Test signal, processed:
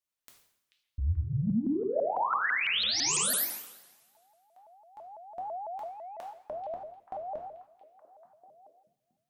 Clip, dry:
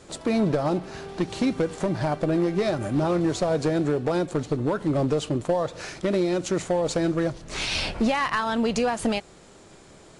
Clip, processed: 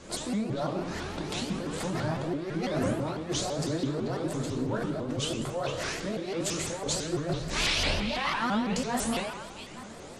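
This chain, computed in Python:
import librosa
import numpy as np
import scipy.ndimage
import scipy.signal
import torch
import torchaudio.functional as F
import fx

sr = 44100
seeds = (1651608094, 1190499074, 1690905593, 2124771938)

p1 = fx.over_compress(x, sr, threshold_db=-29.0, ratio=-1.0)
p2 = fx.doubler(p1, sr, ms=26.0, db=-12.0)
p3 = p2 + fx.echo_stepped(p2, sr, ms=437, hz=3100.0, octaves=-1.4, feedback_pct=70, wet_db=-8, dry=0)
p4 = fx.rev_double_slope(p3, sr, seeds[0], early_s=0.7, late_s=1.8, knee_db=-19, drr_db=-1.0)
p5 = fx.vibrato_shape(p4, sr, shape='saw_up', rate_hz=6.0, depth_cents=250.0)
y = p5 * librosa.db_to_amplitude(-5.0)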